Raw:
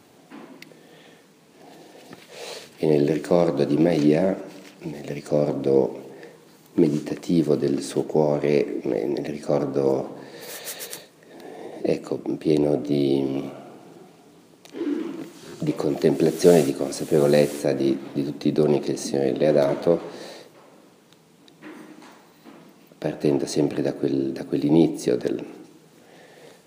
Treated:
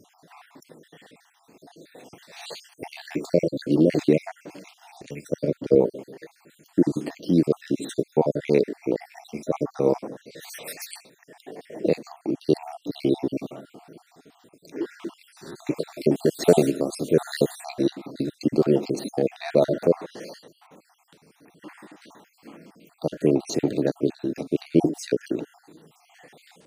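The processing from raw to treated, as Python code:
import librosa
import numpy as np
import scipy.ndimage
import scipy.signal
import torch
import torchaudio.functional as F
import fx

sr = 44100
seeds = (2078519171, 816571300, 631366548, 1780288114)

y = fx.spec_dropout(x, sr, seeds[0], share_pct=57)
y = fx.band_widen(y, sr, depth_pct=70, at=(5.02, 5.75))
y = y * librosa.db_to_amplitude(1.0)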